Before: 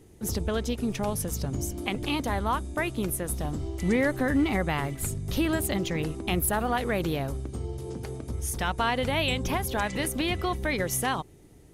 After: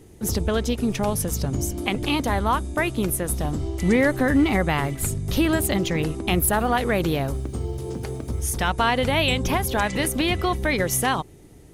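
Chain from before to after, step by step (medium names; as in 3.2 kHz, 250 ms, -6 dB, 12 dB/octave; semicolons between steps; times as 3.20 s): 7.11–8.46 s: added noise white -70 dBFS; trim +5.5 dB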